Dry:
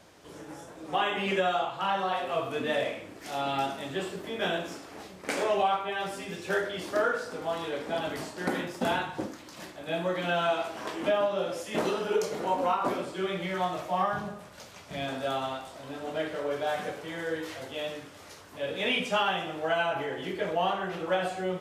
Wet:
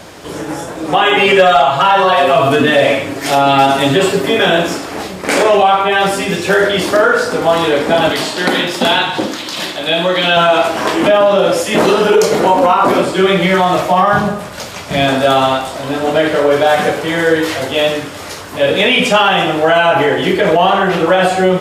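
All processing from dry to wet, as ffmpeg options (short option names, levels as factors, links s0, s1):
-filter_complex "[0:a]asettb=1/sr,asplit=3[s0][s1][s2];[s0]atrim=end=1.044[s3];[s1]atrim=start=1.04:end=4.46,asetpts=PTS-STARTPTS,afade=t=in:d=0.004:c=qsin,afade=t=out:st=3.416:d=0.004:c=qsin,aecho=1:1:7.3:0.86,atrim=end_sample=150822,asoftclip=type=hard:threshold=0.141[s4];[s2]atrim=start=4.456[s5];[s3][s4]acrossfade=d=0.004:c1=hsin:c2=qsin[s6];[s6][s5]acrossfade=d=0.004:c1=qsin:c2=hsin,asettb=1/sr,asplit=3[s7][s8][s9];[s7]atrim=end=8.114[s10];[s8]atrim=start=8.11:end=10.37,asetpts=PTS-STARTPTS,afade=t=in:d=0.004:c=qsin,afade=t=out:st=2.256:d=0.004:c=qsin,highpass=f=190:p=1,equalizer=f=3500:w=1.5:g=10,acompressor=threshold=0.0112:ratio=1.5:attack=3.2:release=140:knee=1:detection=peak[s11];[s9]atrim=start=10.366[s12];[s10][s11]acrossfade=d=0.004:c1=hsin:c2=qsin[s13];[s13][s12]acrossfade=d=0.004:c1=qsin:c2=hsin,bandreject=f=6000:w=30,alimiter=level_in=13.3:limit=0.891:release=50:level=0:latency=1,volume=0.891"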